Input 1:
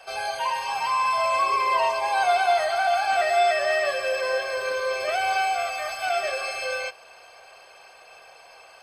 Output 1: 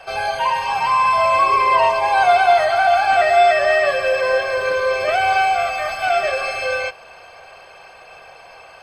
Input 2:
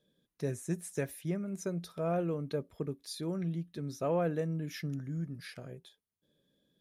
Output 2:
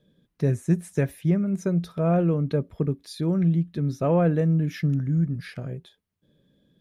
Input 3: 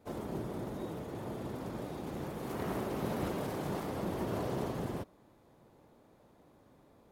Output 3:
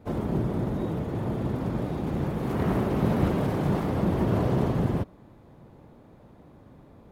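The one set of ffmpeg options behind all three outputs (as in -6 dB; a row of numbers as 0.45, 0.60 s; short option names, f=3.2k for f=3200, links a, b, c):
-af "bass=f=250:g=8,treble=f=4k:g=-8,volume=7.5dB"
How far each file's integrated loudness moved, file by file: +7.5, +12.0, +11.0 LU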